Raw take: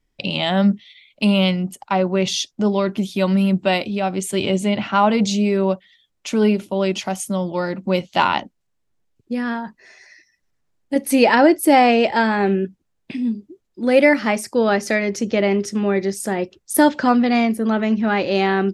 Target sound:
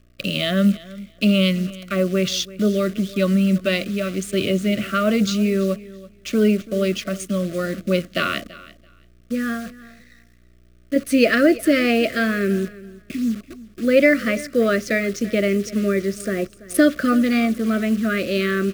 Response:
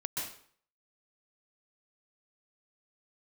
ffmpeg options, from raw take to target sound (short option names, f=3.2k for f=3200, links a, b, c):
-filter_complex "[0:a]adynamicequalizer=threshold=0.0398:dfrequency=580:dqfactor=0.74:tfrequency=580:tqfactor=0.74:attack=5:release=100:ratio=0.375:range=2:mode=cutabove:tftype=bell,acrossover=split=110|2600[a][b][c];[c]adynamicsmooth=sensitivity=4:basefreq=4.6k[d];[a][b][d]amix=inputs=3:normalize=0,aeval=exprs='val(0)+0.00316*(sin(2*PI*60*n/s)+sin(2*PI*2*60*n/s)/2+sin(2*PI*3*60*n/s)/3+sin(2*PI*4*60*n/s)/4+sin(2*PI*5*60*n/s)/5)':c=same,acrusher=bits=7:dc=4:mix=0:aa=0.000001,asuperstop=centerf=880:order=20:qfactor=2.2,aecho=1:1:334|668:0.112|0.0191"